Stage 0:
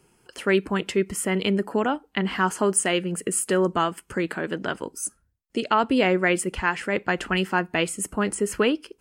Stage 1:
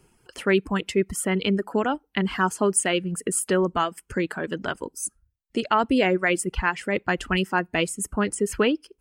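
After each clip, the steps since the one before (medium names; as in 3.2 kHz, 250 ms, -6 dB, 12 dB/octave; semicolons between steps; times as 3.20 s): reverb removal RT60 0.84 s; bass shelf 84 Hz +10 dB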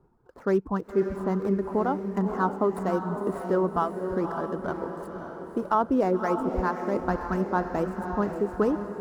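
median filter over 15 samples; resonant high shelf 1.6 kHz -11.5 dB, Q 1.5; echo that smears into a reverb 560 ms, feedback 50%, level -6.5 dB; trim -3 dB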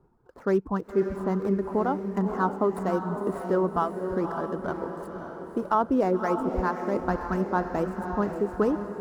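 no audible change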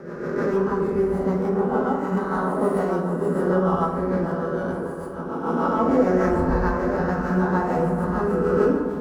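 reverse spectral sustain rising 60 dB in 1.78 s; rotary cabinet horn 6.7 Hz; reverberation RT60 1.3 s, pre-delay 3 ms, DRR -1 dB; trim -1.5 dB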